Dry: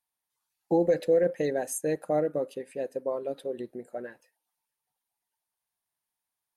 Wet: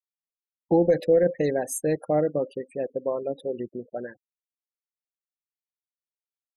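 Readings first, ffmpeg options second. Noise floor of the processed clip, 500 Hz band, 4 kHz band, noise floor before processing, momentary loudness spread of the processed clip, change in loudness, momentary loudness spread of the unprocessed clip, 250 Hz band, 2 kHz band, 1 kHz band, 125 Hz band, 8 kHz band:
under -85 dBFS, +3.5 dB, n/a, under -85 dBFS, 14 LU, +3.5 dB, 15 LU, +4.5 dB, +2.5 dB, +3.0 dB, +6.5 dB, +2.5 dB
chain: -af "lowshelf=f=170:g=8,afftfilt=real='re*gte(hypot(re,im),0.00708)':imag='im*gte(hypot(re,im),0.00708)':win_size=1024:overlap=0.75,volume=2.5dB"

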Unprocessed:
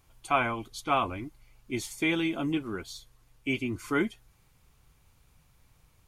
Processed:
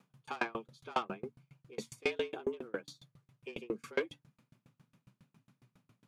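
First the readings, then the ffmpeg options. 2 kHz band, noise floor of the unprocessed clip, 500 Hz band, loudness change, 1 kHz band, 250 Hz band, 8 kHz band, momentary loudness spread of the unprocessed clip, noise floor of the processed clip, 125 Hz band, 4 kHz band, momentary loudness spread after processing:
-9.0 dB, -64 dBFS, -4.0 dB, -9.0 dB, -10.5 dB, -14.0 dB, -12.5 dB, 12 LU, -85 dBFS, -15.5 dB, -9.0 dB, 12 LU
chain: -filter_complex "[0:a]aemphasis=mode=reproduction:type=50kf,bandreject=f=60:t=h:w=6,bandreject=f=120:t=h:w=6,bandreject=f=180:t=h:w=6,acrossover=split=6300[a][b];[a]asoftclip=type=tanh:threshold=-24.5dB[c];[c][b]amix=inputs=2:normalize=0,afreqshift=110,aeval=exprs='val(0)*pow(10,-33*if(lt(mod(7.3*n/s,1),2*abs(7.3)/1000),1-mod(7.3*n/s,1)/(2*abs(7.3)/1000),(mod(7.3*n/s,1)-2*abs(7.3)/1000)/(1-2*abs(7.3)/1000))/20)':c=same,volume=3.5dB"

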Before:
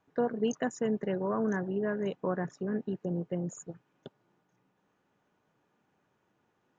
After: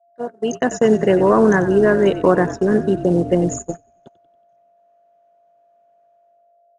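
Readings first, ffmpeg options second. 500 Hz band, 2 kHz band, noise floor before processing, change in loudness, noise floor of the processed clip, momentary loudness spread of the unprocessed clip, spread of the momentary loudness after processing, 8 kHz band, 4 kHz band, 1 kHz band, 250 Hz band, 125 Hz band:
+17.0 dB, +17.0 dB, -76 dBFS, +16.5 dB, -57 dBFS, 7 LU, 12 LU, n/a, +14.5 dB, +16.5 dB, +15.0 dB, +14.5 dB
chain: -filter_complex "[0:a]acrusher=bits=9:mode=log:mix=0:aa=0.000001,dynaudnorm=f=140:g=9:m=15.5dB,aresample=22050,aresample=44100,aeval=exprs='val(0)+0.0178*sin(2*PI*690*n/s)':c=same,adynamicequalizer=threshold=0.0282:dfrequency=340:dqfactor=1.8:tfrequency=340:tqfactor=1.8:attack=5:release=100:ratio=0.375:range=2:mode=boostabove:tftype=bell,asplit=2[a][b];[b]asplit=6[c][d][e][f][g][h];[c]adelay=93,afreqshift=-51,volume=-13dB[i];[d]adelay=186,afreqshift=-102,volume=-18dB[j];[e]adelay=279,afreqshift=-153,volume=-23.1dB[k];[f]adelay=372,afreqshift=-204,volume=-28.1dB[l];[g]adelay=465,afreqshift=-255,volume=-33.1dB[m];[h]adelay=558,afreqshift=-306,volume=-38.2dB[n];[i][j][k][l][m][n]amix=inputs=6:normalize=0[o];[a][o]amix=inputs=2:normalize=0,agate=range=-22dB:threshold=-25dB:ratio=16:detection=peak,lowshelf=f=210:g=-8,volume=3dB"

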